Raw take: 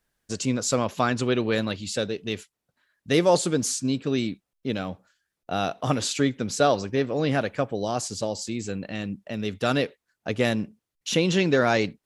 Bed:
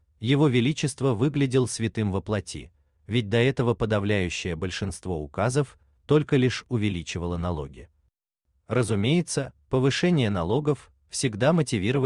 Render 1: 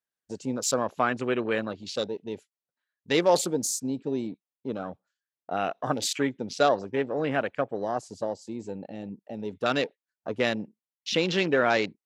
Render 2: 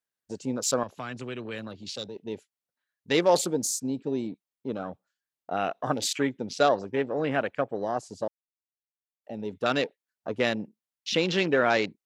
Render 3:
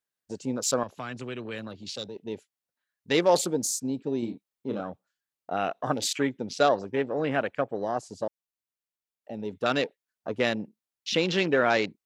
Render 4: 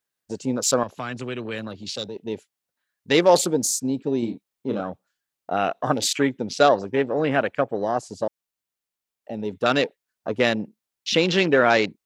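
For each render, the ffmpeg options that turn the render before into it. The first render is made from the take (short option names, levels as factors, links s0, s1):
-af "afwtdn=0.02,highpass=f=370:p=1"
-filter_complex "[0:a]asettb=1/sr,asplit=3[s0][s1][s2];[s0]atrim=end=0.834[s3];[s1]atrim=start=0.83:end=2.16,asetpts=PTS-STARTPTS,afade=t=in:d=0.004:c=qsin,afade=t=out:st=1.326:d=0.004:c=qsin,acrossover=split=160|3000[s4][s5][s6];[s5]acompressor=threshold=0.01:ratio=2.5:attack=3.2:release=140:knee=2.83:detection=peak[s7];[s4][s7][s6]amix=inputs=3:normalize=0[s8];[s2]atrim=start=2.156[s9];[s3][s8]acrossfade=d=0.004:c1=hsin:c2=qsin[s10];[s10][s9]acrossfade=d=0.004:c1=qsin:c2=hsin,asplit=3[s11][s12][s13];[s11]atrim=end=8.28,asetpts=PTS-STARTPTS,afade=t=out:st=8.276:d=0.004:c=hsin[s14];[s12]atrim=start=8.28:end=9.24,asetpts=PTS-STARTPTS,volume=0[s15];[s13]atrim=start=9.24,asetpts=PTS-STARTPTS,afade=t=in:d=0.004:c=hsin[s16];[s14][s15][s16]concat=n=3:v=0:a=1"
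-filter_complex "[0:a]asettb=1/sr,asplit=3[s0][s1][s2];[s0]atrim=end=4.194[s3];[s1]atrim=start=4.19:end=4.81,asetpts=PTS-STARTPTS,afade=t=in:d=0.004:c=qsin,afade=t=out:st=0.616:d=0.004:c=qsin,asplit=2[s4][s5];[s5]adelay=34,volume=0.562[s6];[s4][s6]amix=inputs=2:normalize=0,atrim=end_sample=27342[s7];[s2]atrim=start=4.806[s8];[s3][s7]acrossfade=d=0.004:c1=hsin:c2=qsin[s9];[s9][s8]acrossfade=d=0.004:c1=qsin:c2=hsin"
-af "volume=1.88"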